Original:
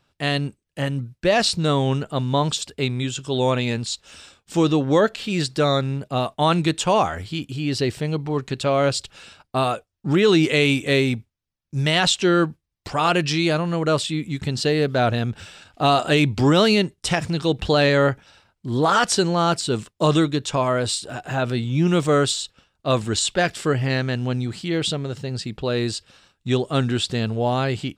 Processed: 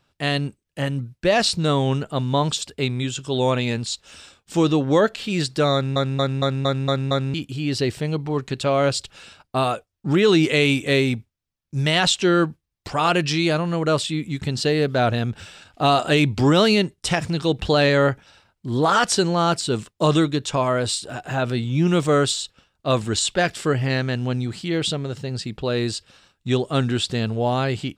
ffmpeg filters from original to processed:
-filter_complex "[0:a]asplit=8[s0][s1][s2][s3][s4][s5][s6][s7];[s0]atrim=end=5.962[s8];[s1]atrim=start=5.728:end=5.962[s9];[s2]atrim=start=5.728:end=5.962[s10];[s3]atrim=start=5.728:end=5.962[s11];[s4]atrim=start=5.728:end=5.962[s12];[s5]atrim=start=5.728:end=5.962[s13];[s6]atrim=start=5.728:end=5.962[s14];[s7]atrim=start=7.338[s15];[s8][s9]acrossfade=d=0.004:c1=hsin:c2=hsin[s16];[s16][s10]acrossfade=d=0.004:c1=hsin:c2=hsin[s17];[s17][s11]acrossfade=d=0.004:c1=hsin:c2=hsin[s18];[s18][s12]acrossfade=d=0.004:c1=hsin:c2=hsin[s19];[s19][s13]acrossfade=d=0.004:c1=hsin:c2=hsin[s20];[s20][s14]acrossfade=d=0.004:c1=hsin:c2=hsin[s21];[s21][s15]acrossfade=d=0.004:c1=hsin:c2=hsin"

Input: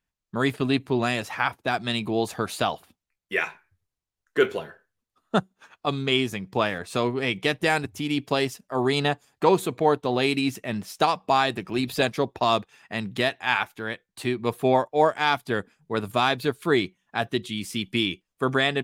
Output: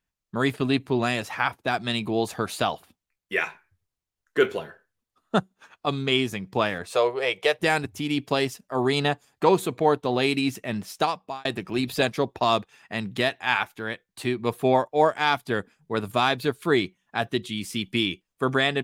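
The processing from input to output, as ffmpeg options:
-filter_complex "[0:a]asettb=1/sr,asplit=3[s0][s1][s2];[s0]atrim=end=6.924[s3];[s1]atrim=start=6.92:end=7.59,asetpts=PTS-STARTPTS,afade=t=in:d=0.004:c=qsin,afade=t=out:st=0.666:d=0.004:c=qsin,lowshelf=f=350:t=q:w=3:g=-12.5[s4];[s2]atrim=start=7.586[s5];[s3][s4]acrossfade=d=0.004:c1=hsin:c2=qsin[s6];[s6][s5]acrossfade=d=0.004:c1=qsin:c2=hsin,asplit=2[s7][s8];[s7]atrim=end=11.45,asetpts=PTS-STARTPTS,afade=t=out:st=10.92:d=0.53[s9];[s8]atrim=start=11.45,asetpts=PTS-STARTPTS,afade=t=in:d=0.004:c=hsin[s10];[s9][s10]concat=n=2:v=0:a=1"

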